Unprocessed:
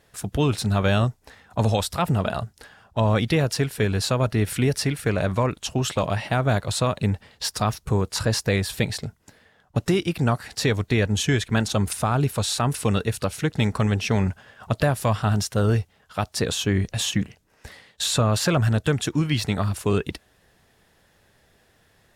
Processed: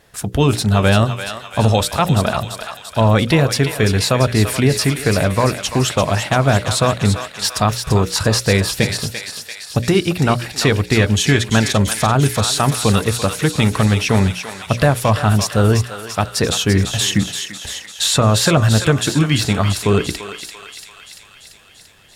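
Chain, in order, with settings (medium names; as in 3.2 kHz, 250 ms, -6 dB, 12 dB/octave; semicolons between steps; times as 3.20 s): hum notches 60/120/180/240/300/360/420/480/540/600 Hz; on a send: thinning echo 341 ms, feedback 71%, high-pass 1.1 kHz, level -6.5 dB; on the sum: trim +7.5 dB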